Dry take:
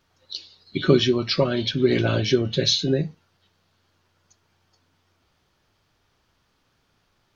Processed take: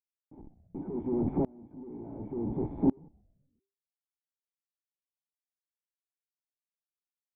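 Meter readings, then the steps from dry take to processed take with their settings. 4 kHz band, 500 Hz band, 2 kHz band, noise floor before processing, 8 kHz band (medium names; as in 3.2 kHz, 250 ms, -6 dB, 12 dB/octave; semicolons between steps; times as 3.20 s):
under -40 dB, -15.0 dB, under -35 dB, -69 dBFS, no reading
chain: peaking EQ 200 Hz -4 dB 2.2 oct; comb 4.6 ms, depth 42%; waveshaping leveller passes 2; in parallel at -1 dB: compression, threshold -22 dBFS, peak gain reduction 11.5 dB; on the sum: Schmitt trigger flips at -28 dBFS; cascade formant filter u; distance through air 460 m; on a send: frequency-shifting echo 127 ms, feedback 47%, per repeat -99 Hz, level -15.5 dB; on the sum: sawtooth tremolo in dB swelling 0.69 Hz, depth 30 dB; trim +6.5 dB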